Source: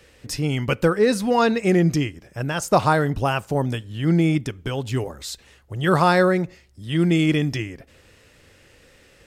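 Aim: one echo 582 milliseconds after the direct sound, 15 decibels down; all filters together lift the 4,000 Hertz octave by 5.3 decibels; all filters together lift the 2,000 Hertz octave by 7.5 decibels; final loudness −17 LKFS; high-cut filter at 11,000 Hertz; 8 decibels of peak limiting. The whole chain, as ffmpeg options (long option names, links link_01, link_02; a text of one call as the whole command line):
ffmpeg -i in.wav -af "lowpass=11000,equalizer=frequency=2000:width_type=o:gain=9,equalizer=frequency=4000:width_type=o:gain=3.5,alimiter=limit=-10.5dB:level=0:latency=1,aecho=1:1:582:0.178,volume=5dB" out.wav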